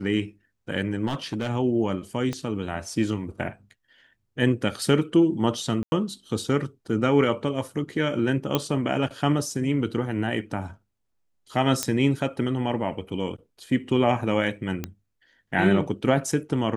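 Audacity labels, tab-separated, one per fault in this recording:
1.060000	1.500000	clipped -22.5 dBFS
2.330000	2.330000	pop -17 dBFS
5.830000	5.920000	dropout 91 ms
8.550000	8.550000	pop -8 dBFS
11.830000	11.830000	pop -8 dBFS
14.840000	14.840000	pop -15 dBFS

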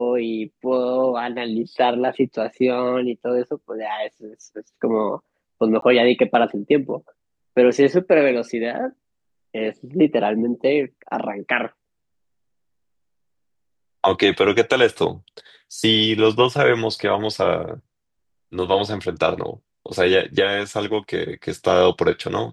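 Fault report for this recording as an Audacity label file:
5.810000	5.820000	dropout 13 ms

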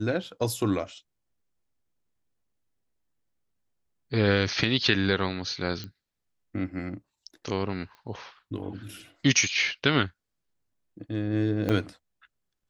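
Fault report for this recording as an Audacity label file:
5.840000	5.840000	pop -23 dBFS
7.950000	7.950000	pop -35 dBFS
11.690000	11.690000	dropout 4.4 ms

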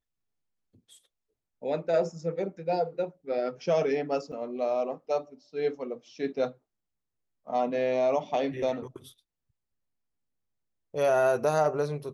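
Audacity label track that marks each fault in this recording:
4.320000	4.330000	dropout 5.6 ms

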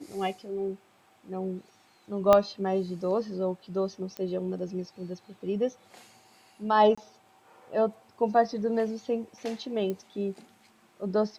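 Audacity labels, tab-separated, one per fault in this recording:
2.330000	2.330000	pop -8 dBFS
4.170000	4.170000	pop -21 dBFS
6.950000	6.970000	dropout 25 ms
9.900000	9.900000	pop -21 dBFS

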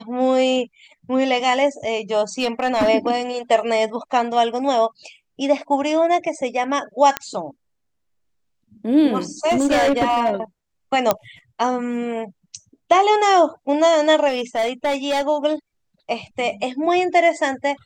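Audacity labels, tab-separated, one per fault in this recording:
2.400000	2.890000	clipped -13.5 dBFS
7.170000	7.170000	pop -5 dBFS
9.490000	10.300000	clipped -13 dBFS
11.110000	11.110000	pop -2 dBFS
14.280000	15.220000	clipped -16.5 dBFS

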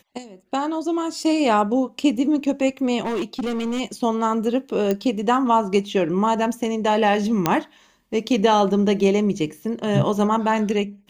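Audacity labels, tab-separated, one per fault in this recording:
3.010000	3.810000	clipped -21 dBFS
4.910000	4.910000	pop -10 dBFS
7.460000	7.460000	pop -3 dBFS

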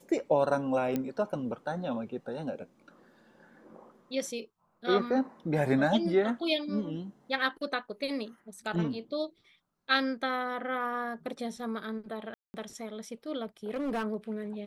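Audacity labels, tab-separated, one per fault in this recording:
0.960000	0.960000	pop -18 dBFS
12.340000	12.540000	dropout 200 ms
13.690000	14.050000	clipped -28.5 dBFS

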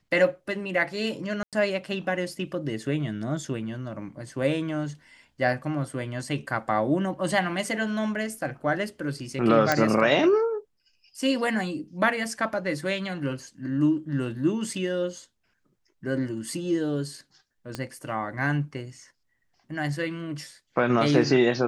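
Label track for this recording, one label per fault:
1.430000	1.530000	dropout 97 ms
9.720000	9.720000	pop -8 dBFS
17.750000	17.750000	pop -17 dBFS

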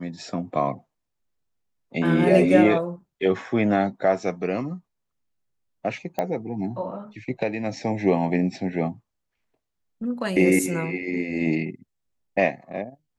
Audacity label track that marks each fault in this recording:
6.190000	6.190000	pop -13 dBFS

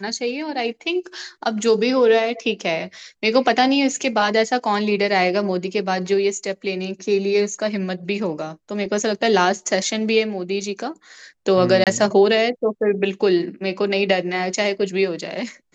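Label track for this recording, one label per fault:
11.840000	11.870000	dropout 27 ms

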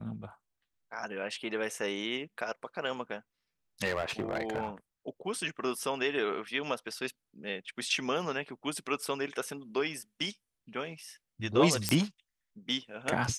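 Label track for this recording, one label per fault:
3.840000	4.680000	clipped -26.5 dBFS
11.890000	11.890000	pop -10 dBFS

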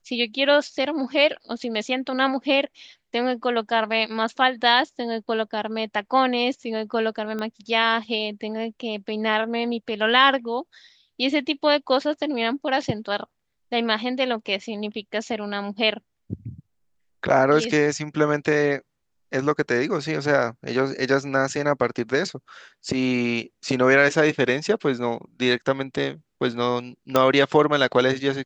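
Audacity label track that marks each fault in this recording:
7.390000	7.390000	pop -18 dBFS
27.160000	27.160000	pop -5 dBFS

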